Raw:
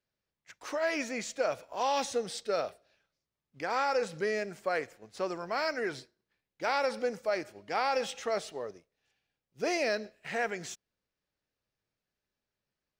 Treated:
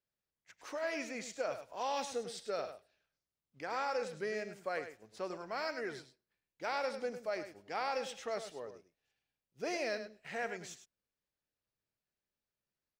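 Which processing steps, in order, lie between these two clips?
single-tap delay 102 ms −10.5 dB
level −7 dB

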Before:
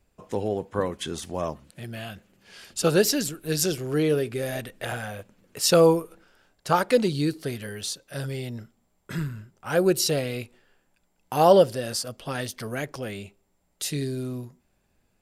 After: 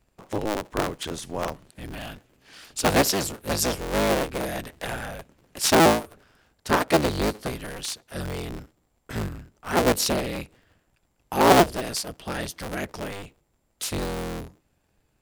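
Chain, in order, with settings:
sub-harmonics by changed cycles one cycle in 3, inverted

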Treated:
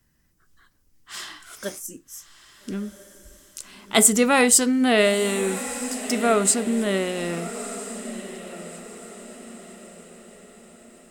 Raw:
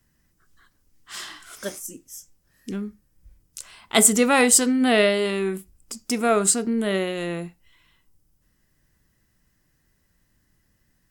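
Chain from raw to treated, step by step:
feedback delay with all-pass diffusion 1,297 ms, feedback 44%, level −12.5 dB

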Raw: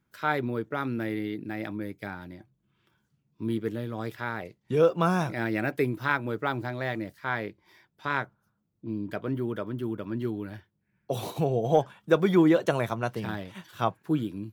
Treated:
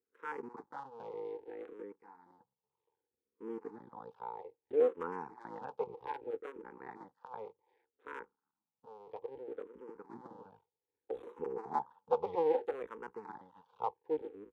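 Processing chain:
sub-harmonics by changed cycles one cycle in 2, muted
pair of resonant band-passes 640 Hz, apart 0.87 octaves
frequency shifter mixed with the dry sound −0.63 Hz
level +2 dB

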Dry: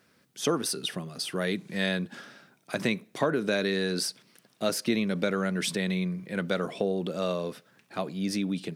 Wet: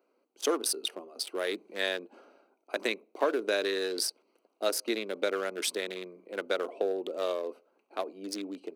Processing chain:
adaptive Wiener filter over 25 samples
inverse Chebyshev high-pass filter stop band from 160 Hz, stop band 40 dB
high-shelf EQ 11,000 Hz +10 dB

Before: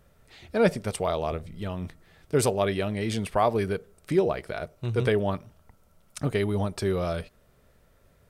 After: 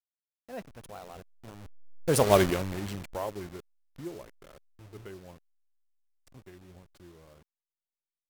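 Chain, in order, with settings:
hold until the input has moved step −28 dBFS
source passing by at 0:02.34, 38 m/s, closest 4.4 metres
level +5.5 dB

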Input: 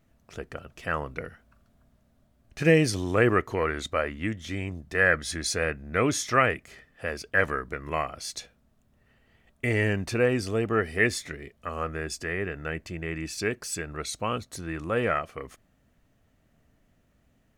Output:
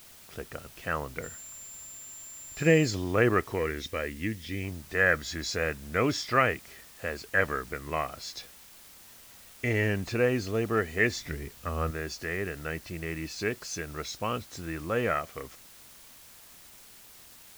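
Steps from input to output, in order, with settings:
hearing-aid frequency compression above 3,700 Hz 1.5 to 1
0:11.16–0:11.91: low-shelf EQ 200 Hz +11 dB
in parallel at −12 dB: bit-depth reduction 6 bits, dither triangular
0:01.22–0:02.93: on the sum: steady tone 7,300 Hz −39 dBFS
0:03.58–0:04.64: gain on a spectral selection 520–1,600 Hz −7 dB
level −4 dB

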